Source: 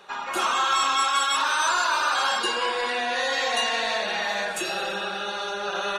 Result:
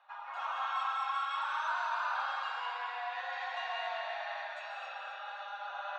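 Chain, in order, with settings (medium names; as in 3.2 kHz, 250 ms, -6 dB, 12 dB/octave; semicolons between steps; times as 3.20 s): steep high-pass 660 Hz 48 dB/octave; tape spacing loss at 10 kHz 40 dB; two-band feedback delay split 1.2 kHz, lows 124 ms, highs 264 ms, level -8 dB; reverberation, pre-delay 128 ms, DRR 2 dB; trim -8.5 dB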